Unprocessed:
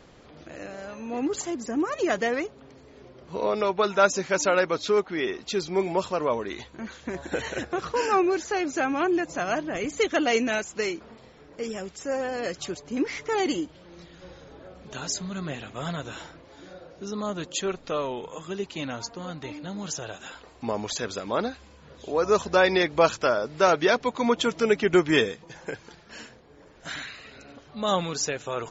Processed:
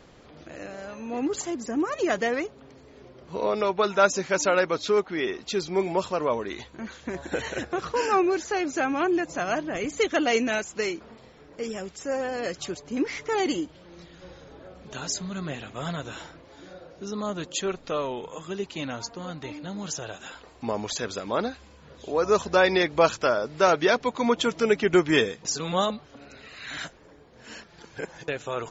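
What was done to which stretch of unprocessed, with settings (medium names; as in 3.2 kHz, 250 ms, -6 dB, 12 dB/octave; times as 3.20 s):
25.45–28.28 s: reverse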